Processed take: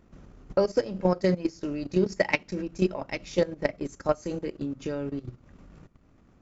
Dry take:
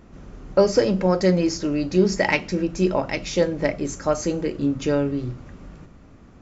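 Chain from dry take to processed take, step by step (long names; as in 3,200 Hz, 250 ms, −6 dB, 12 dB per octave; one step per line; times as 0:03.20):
output level in coarse steps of 9 dB
transient designer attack +4 dB, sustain −9 dB
level −4.5 dB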